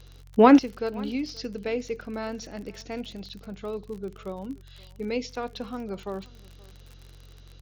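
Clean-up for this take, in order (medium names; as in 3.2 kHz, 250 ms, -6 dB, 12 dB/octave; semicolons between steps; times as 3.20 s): de-click; de-hum 45.4 Hz, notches 3; inverse comb 526 ms -24 dB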